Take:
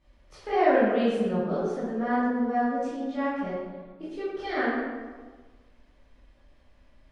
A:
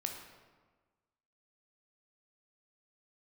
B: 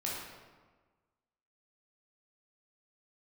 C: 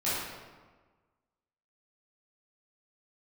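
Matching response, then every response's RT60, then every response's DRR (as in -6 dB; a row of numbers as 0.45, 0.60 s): C; 1.4, 1.4, 1.4 s; 2.5, -5.5, -12.0 dB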